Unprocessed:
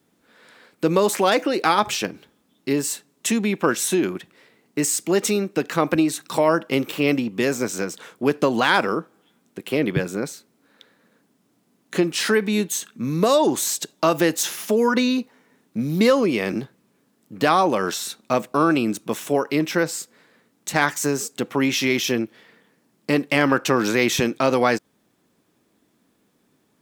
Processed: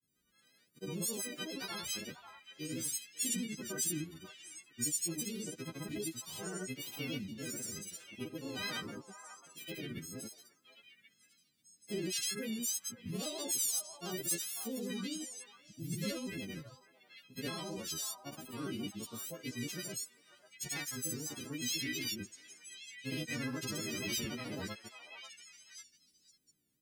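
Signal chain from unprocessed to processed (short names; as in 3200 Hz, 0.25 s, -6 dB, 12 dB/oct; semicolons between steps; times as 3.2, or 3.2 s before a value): frequency quantiser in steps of 4 st; passive tone stack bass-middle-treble 10-0-1; grains, grains 30/s, pitch spread up and down by 3 st; on a send: delay with a stepping band-pass 0.541 s, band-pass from 970 Hz, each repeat 1.4 oct, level -6 dB; on the sum: gain +2.5 dB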